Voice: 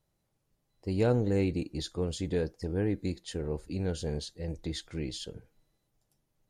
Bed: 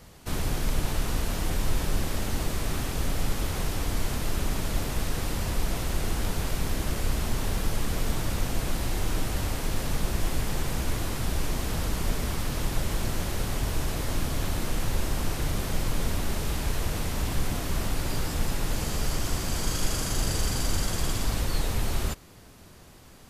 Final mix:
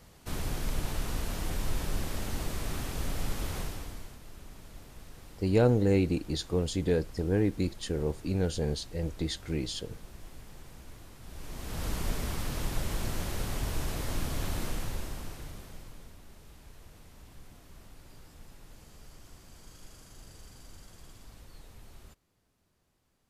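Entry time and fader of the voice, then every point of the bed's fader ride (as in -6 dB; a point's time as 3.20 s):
4.55 s, +3.0 dB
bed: 3.58 s -5.5 dB
4.19 s -20.5 dB
11.20 s -20.5 dB
11.88 s -4.5 dB
14.64 s -4.5 dB
16.16 s -24 dB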